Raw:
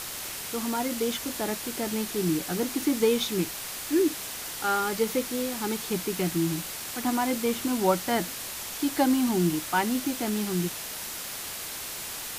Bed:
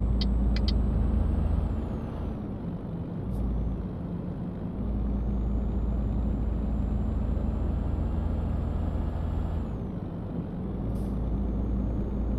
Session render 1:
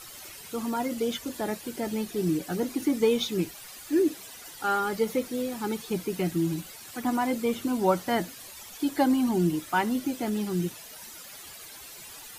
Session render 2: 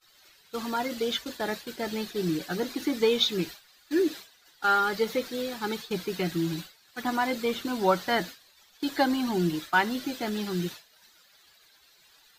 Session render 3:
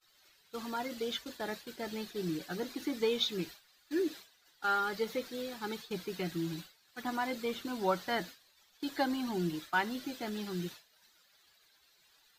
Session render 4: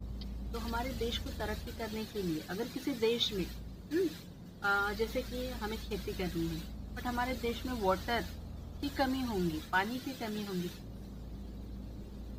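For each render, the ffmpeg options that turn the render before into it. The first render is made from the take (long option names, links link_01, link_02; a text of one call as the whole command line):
ffmpeg -i in.wav -af "afftdn=noise_reduction=13:noise_floor=-37" out.wav
ffmpeg -i in.wav -af "agate=range=-33dB:threshold=-33dB:ratio=3:detection=peak,equalizer=frequency=100:width_type=o:width=0.67:gain=-6,equalizer=frequency=250:width_type=o:width=0.67:gain=-4,equalizer=frequency=1600:width_type=o:width=0.67:gain=6,equalizer=frequency=4000:width_type=o:width=0.67:gain=9,equalizer=frequency=10000:width_type=o:width=0.67:gain=-8" out.wav
ffmpeg -i in.wav -af "volume=-7.5dB" out.wav
ffmpeg -i in.wav -i bed.wav -filter_complex "[1:a]volume=-16dB[link_01];[0:a][link_01]amix=inputs=2:normalize=0" out.wav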